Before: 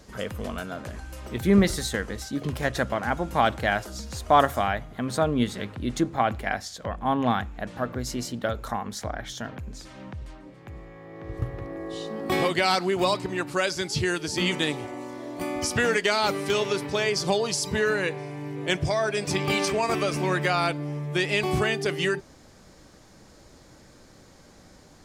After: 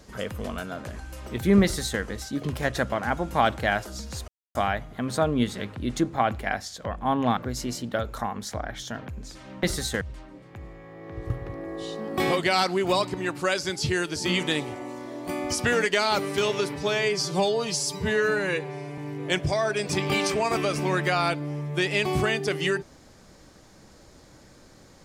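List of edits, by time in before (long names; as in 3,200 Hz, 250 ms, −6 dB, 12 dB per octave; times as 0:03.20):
0:01.63–0:02.01: duplicate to 0:10.13
0:04.28–0:04.55: silence
0:07.37–0:07.87: remove
0:16.88–0:18.36: time-stretch 1.5×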